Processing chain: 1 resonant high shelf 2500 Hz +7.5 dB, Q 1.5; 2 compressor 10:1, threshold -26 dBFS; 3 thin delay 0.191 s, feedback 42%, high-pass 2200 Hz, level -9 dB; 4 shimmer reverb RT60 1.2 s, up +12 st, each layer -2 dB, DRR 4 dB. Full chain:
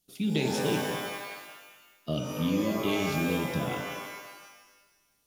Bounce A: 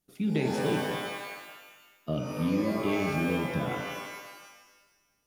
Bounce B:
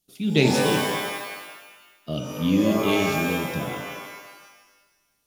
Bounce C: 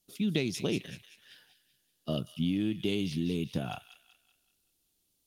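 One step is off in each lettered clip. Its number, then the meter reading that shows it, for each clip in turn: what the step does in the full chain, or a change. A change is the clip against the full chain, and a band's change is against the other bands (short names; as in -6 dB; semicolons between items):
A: 1, 8 kHz band -6.0 dB; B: 2, mean gain reduction 4.0 dB; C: 4, 1 kHz band -8.5 dB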